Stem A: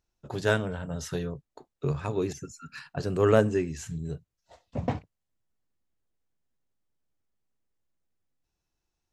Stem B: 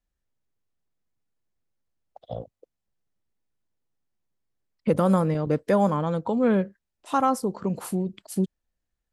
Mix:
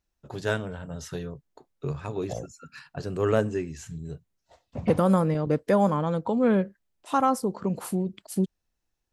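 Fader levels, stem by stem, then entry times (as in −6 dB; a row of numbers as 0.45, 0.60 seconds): −2.5, −0.5 decibels; 0.00, 0.00 seconds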